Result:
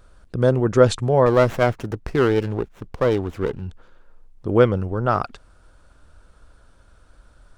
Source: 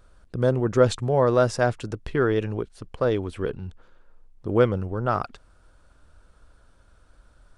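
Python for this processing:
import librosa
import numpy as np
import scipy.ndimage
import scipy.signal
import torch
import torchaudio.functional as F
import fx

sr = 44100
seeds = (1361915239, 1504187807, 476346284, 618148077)

y = fx.running_max(x, sr, window=9, at=(1.26, 3.62))
y = y * librosa.db_to_amplitude(4.0)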